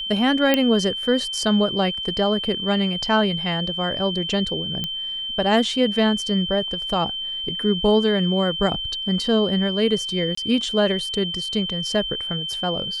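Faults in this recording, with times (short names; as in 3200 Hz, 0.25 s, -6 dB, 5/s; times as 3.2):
tone 3100 Hz -26 dBFS
0.54 pop -4 dBFS
4.84 pop -12 dBFS
10.35–10.37 gap 24 ms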